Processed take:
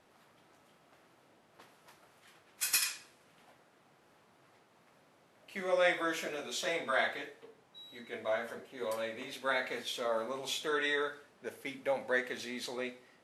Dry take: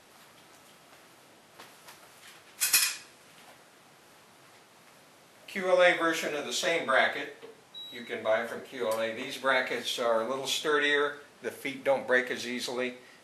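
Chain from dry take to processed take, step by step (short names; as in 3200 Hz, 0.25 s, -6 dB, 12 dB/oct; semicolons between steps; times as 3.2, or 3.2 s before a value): mismatched tape noise reduction decoder only; gain -6.5 dB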